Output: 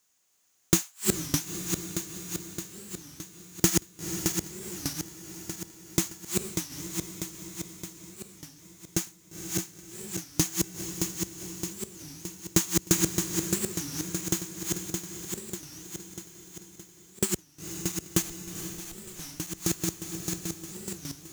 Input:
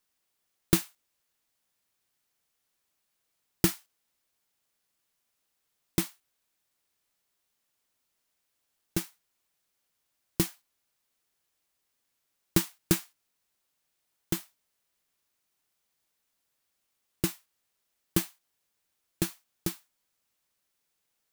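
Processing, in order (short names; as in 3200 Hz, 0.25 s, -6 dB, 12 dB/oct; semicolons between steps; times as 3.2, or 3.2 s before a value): regenerating reverse delay 0.309 s, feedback 70%, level -3 dB; HPF 47 Hz; bell 6700 Hz +13 dB 0.36 oct; in parallel at 0 dB: compressor, threshold -38 dBFS, peak gain reduction 20 dB; 18.22–19.31 on the sum: tube stage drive 37 dB, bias 0.55; on a send: diffused feedback echo 0.473 s, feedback 48%, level -9 dB; on the sum: record warp 33 1/3 rpm, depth 250 cents; gain -1 dB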